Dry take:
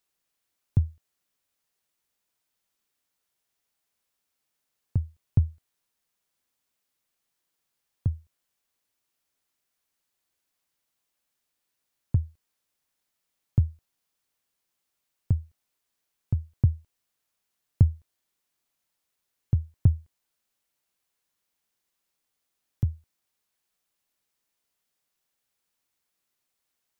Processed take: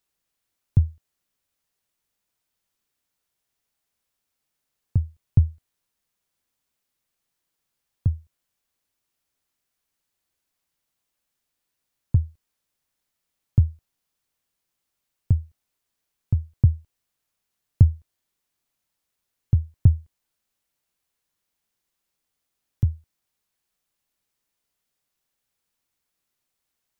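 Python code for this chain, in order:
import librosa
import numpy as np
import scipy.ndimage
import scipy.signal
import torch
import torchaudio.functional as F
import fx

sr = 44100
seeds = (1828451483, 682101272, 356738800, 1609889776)

y = fx.low_shelf(x, sr, hz=170.0, db=6.0)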